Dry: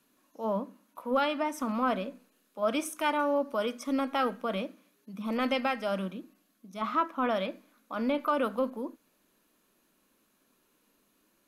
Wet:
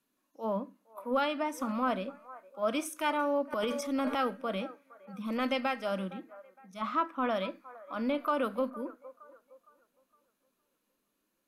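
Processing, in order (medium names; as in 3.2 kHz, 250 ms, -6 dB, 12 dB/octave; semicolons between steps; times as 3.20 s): feedback echo behind a band-pass 462 ms, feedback 42%, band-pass 820 Hz, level -16 dB; spectral noise reduction 8 dB; 3.52–4.19 s: transient shaper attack -2 dB, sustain +11 dB; trim -2 dB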